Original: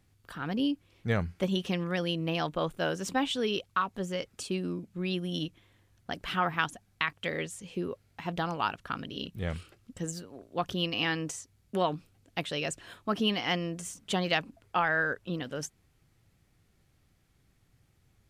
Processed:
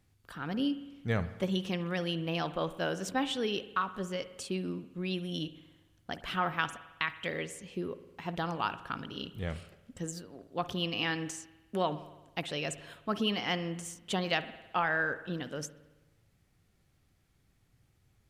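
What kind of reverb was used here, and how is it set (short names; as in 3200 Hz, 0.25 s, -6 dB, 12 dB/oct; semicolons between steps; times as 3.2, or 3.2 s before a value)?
spring tank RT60 1.1 s, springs 53 ms, chirp 25 ms, DRR 13 dB; gain -2.5 dB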